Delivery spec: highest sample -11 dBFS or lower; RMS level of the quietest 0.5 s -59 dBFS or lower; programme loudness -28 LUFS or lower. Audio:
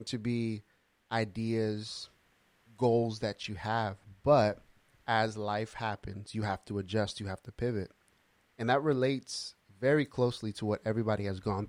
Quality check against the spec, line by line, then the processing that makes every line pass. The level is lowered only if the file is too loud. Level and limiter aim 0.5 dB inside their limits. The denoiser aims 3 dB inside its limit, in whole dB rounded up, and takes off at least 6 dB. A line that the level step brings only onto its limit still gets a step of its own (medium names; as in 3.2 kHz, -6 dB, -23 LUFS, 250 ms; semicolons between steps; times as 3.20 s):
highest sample -13.5 dBFS: pass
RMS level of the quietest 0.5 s -70 dBFS: pass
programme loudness -32.5 LUFS: pass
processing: none needed